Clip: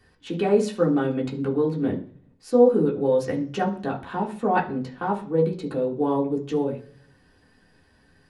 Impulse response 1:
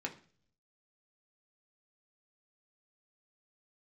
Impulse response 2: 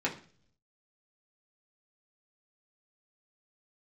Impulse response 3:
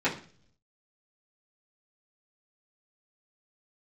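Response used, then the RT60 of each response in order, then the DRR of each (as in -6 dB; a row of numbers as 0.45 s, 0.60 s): 2; 0.45 s, 0.45 s, 0.45 s; 0.5 dB, -4.0 dB, -10.5 dB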